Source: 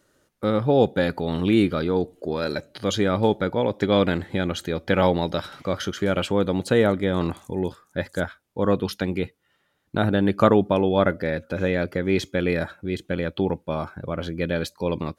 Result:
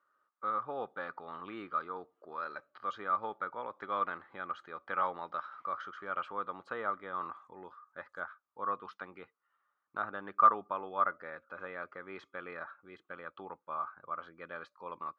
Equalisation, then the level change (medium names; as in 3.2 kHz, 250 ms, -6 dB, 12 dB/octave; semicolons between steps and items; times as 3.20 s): band-pass filter 1.2 kHz, Q 8.3; distance through air 59 m; +3.0 dB